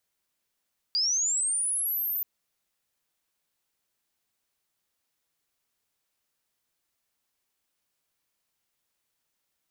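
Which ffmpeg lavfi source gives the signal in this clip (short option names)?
-f lavfi -i "aevalsrc='pow(10,(-22.5-4.5*t/1.28)/20)*sin(2*PI*(4700*t+9300*t*t/(2*1.28)))':d=1.28:s=44100"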